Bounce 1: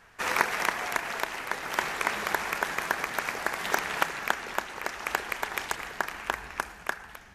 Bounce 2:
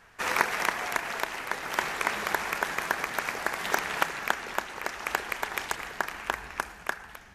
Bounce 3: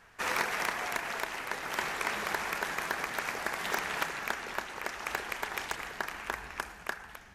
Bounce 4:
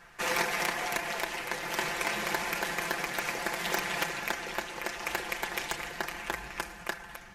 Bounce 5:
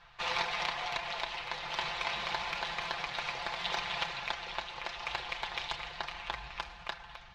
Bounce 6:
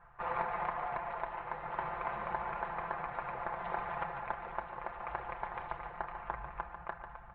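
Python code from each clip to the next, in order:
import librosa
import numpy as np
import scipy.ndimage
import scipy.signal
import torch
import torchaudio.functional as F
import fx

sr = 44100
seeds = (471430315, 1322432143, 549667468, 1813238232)

y1 = x
y2 = 10.0 ** (-18.5 / 20.0) * np.tanh(y1 / 10.0 ** (-18.5 / 20.0))
y2 = y2 * librosa.db_to_amplitude(-2.0)
y3 = fx.dynamic_eq(y2, sr, hz=1300.0, q=1.7, threshold_db=-49.0, ratio=4.0, max_db=-6)
y3 = y3 + 0.65 * np.pad(y3, (int(5.8 * sr / 1000.0), 0))[:len(y3)]
y3 = y3 * librosa.db_to_amplitude(2.5)
y4 = fx.curve_eq(y3, sr, hz=(120.0, 270.0, 790.0, 1100.0, 1700.0, 3800.0, 11000.0), db=(0, -18, -2, -1, -8, 4, -30))
y5 = scipy.signal.sosfilt(scipy.signal.butter(4, 1500.0, 'lowpass', fs=sr, output='sos'), y4)
y5 = y5 + 10.0 ** (-9.0 / 20.0) * np.pad(y5, (int(145 * sr / 1000.0), 0))[:len(y5)]
y5 = y5 * librosa.db_to_amplitude(1.0)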